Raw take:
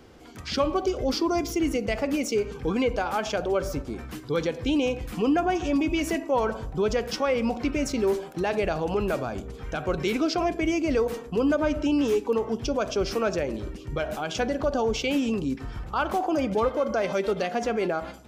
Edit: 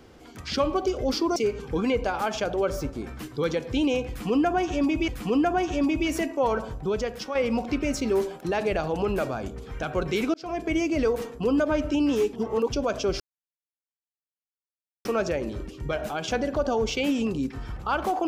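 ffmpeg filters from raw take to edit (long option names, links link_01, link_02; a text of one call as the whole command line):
ffmpeg -i in.wav -filter_complex "[0:a]asplit=8[link_01][link_02][link_03][link_04][link_05][link_06][link_07][link_08];[link_01]atrim=end=1.362[link_09];[link_02]atrim=start=2.278:end=6.002[link_10];[link_03]atrim=start=4.998:end=7.27,asetpts=PTS-STARTPTS,afade=type=out:start_time=1.562:duration=0.71:silence=0.446684[link_11];[link_04]atrim=start=7.27:end=10.26,asetpts=PTS-STARTPTS,afade=type=in:duration=0.004:curve=hsin:silence=0.446684,afade=type=out:start_time=2.986:duration=0.004:curve=hsin[link_12];[link_05]atrim=start=10.26:end=12.252,asetpts=PTS-STARTPTS,afade=type=in:duration=0.36[link_13];[link_06]atrim=start=12.248:end=12.622,asetpts=PTS-STARTPTS,areverse[link_14];[link_07]atrim=start=12.618:end=13.12,asetpts=PTS-STARTPTS,afade=type=out:start_time=0.498:duration=0.004:curve=hsin,apad=pad_dur=1.85[link_15];[link_08]atrim=start=13.12,asetpts=PTS-STARTPTS,afade=type=in:duration=0.004:curve=hsin[link_16];[link_09][link_10]acrossfade=duration=0.004:curve1=hsin:curve2=hsin[link_17];[link_11][link_12][link_13]concat=n=3:v=0:a=1[link_18];[link_17][link_18]acrossfade=duration=0.004:curve1=hsin:curve2=hsin[link_19];[link_19][link_14]acrossfade=duration=0.004:curve1=hsin:curve2=hsin[link_20];[link_15][link_16]concat=n=2:v=0:a=1[link_21];[link_20][link_21]acrossfade=duration=0.004:curve1=hsin:curve2=hsin" out.wav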